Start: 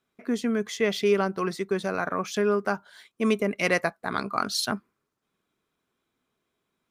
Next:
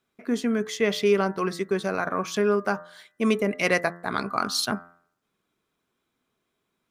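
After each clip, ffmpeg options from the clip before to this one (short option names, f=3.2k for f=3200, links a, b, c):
-af "bandreject=f=86.49:t=h:w=4,bandreject=f=172.98:t=h:w=4,bandreject=f=259.47:t=h:w=4,bandreject=f=345.96:t=h:w=4,bandreject=f=432.45:t=h:w=4,bandreject=f=518.94:t=h:w=4,bandreject=f=605.43:t=h:w=4,bandreject=f=691.92:t=h:w=4,bandreject=f=778.41:t=h:w=4,bandreject=f=864.9:t=h:w=4,bandreject=f=951.39:t=h:w=4,bandreject=f=1.03788k:t=h:w=4,bandreject=f=1.12437k:t=h:w=4,bandreject=f=1.21086k:t=h:w=4,bandreject=f=1.29735k:t=h:w=4,bandreject=f=1.38384k:t=h:w=4,bandreject=f=1.47033k:t=h:w=4,bandreject=f=1.55682k:t=h:w=4,bandreject=f=1.64331k:t=h:w=4,bandreject=f=1.7298k:t=h:w=4,bandreject=f=1.81629k:t=h:w=4,bandreject=f=1.90278k:t=h:w=4,bandreject=f=1.98927k:t=h:w=4,volume=1.5dB"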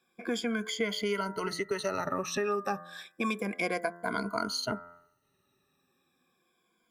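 -filter_complex "[0:a]afftfilt=real='re*pow(10,19/40*sin(2*PI*(1.8*log(max(b,1)*sr/1024/100)/log(2)-(-0.31)*(pts-256)/sr)))':imag='im*pow(10,19/40*sin(2*PI*(1.8*log(max(b,1)*sr/1024/100)/log(2)-(-0.31)*(pts-256)/sr)))':win_size=1024:overlap=0.75,acrossover=split=810|7200[a][b][c];[a]acompressor=threshold=-33dB:ratio=4[d];[b]acompressor=threshold=-35dB:ratio=4[e];[c]acompressor=threshold=-52dB:ratio=4[f];[d][e][f]amix=inputs=3:normalize=0"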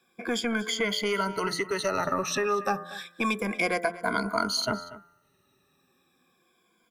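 -filter_complex "[0:a]acrossover=split=640[a][b];[a]asoftclip=type=tanh:threshold=-31dB[c];[c][b]amix=inputs=2:normalize=0,aecho=1:1:237:0.126,volume=5.5dB"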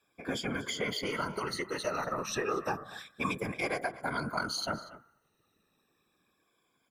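-af "afftfilt=real='hypot(re,im)*cos(2*PI*random(0))':imag='hypot(re,im)*sin(2*PI*random(1))':win_size=512:overlap=0.75"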